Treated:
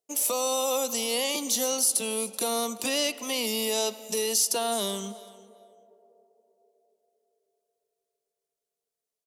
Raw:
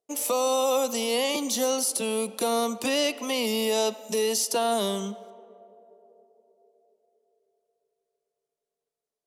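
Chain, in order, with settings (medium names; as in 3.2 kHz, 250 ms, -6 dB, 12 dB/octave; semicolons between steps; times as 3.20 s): treble shelf 3.4 kHz +9 dB; on a send: feedback delay 380 ms, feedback 16%, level -21 dB; on the sum: trim -4.5 dB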